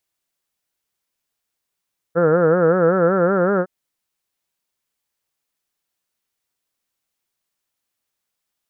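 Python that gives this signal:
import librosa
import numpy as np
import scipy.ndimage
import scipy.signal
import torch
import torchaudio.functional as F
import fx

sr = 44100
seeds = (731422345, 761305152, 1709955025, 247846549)

y = fx.vowel(sr, seeds[0], length_s=1.51, word='heard', hz=162.0, glide_st=3.0, vibrato_hz=5.3, vibrato_st=1.3)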